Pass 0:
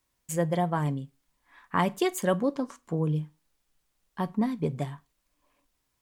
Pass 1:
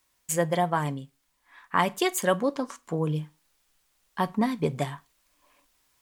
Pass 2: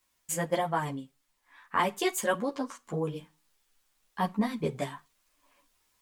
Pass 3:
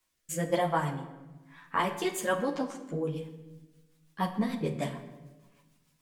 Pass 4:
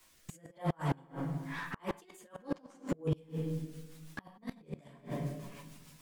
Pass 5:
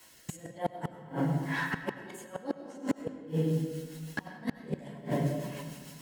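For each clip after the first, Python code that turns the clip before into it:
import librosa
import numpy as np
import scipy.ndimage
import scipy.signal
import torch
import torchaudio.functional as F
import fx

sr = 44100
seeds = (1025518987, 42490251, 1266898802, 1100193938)

y1 = fx.low_shelf(x, sr, hz=470.0, db=-9.5)
y1 = fx.rider(y1, sr, range_db=10, speed_s=2.0)
y1 = y1 * librosa.db_to_amplitude(6.0)
y2 = fx.ensemble(y1, sr)
y3 = fx.rotary_switch(y2, sr, hz=1.1, then_hz=6.7, switch_at_s=3.02)
y3 = fx.room_shoebox(y3, sr, seeds[0], volume_m3=680.0, walls='mixed', distance_m=0.66)
y3 = y3 * librosa.db_to_amplitude(1.0)
y4 = fx.over_compress(y3, sr, threshold_db=-37.0, ratio=-1.0)
y4 = fx.gate_flip(y4, sr, shuts_db=-28.0, range_db=-30)
y4 = fx.slew_limit(y4, sr, full_power_hz=8.6)
y4 = y4 * librosa.db_to_amplitude(8.5)
y5 = fx.gate_flip(y4, sr, shuts_db=-26.0, range_db=-37)
y5 = fx.notch_comb(y5, sr, f0_hz=1200.0)
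y5 = fx.rev_freeverb(y5, sr, rt60_s=1.6, hf_ratio=0.7, predelay_ms=55, drr_db=9.5)
y5 = y5 * librosa.db_to_amplitude(9.0)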